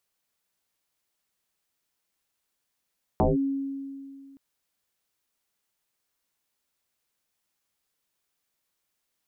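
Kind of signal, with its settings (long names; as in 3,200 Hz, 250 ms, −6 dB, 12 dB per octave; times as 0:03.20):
two-operator FM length 1.17 s, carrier 274 Hz, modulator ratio 0.44, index 5.5, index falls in 0.17 s linear, decay 2.28 s, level −17 dB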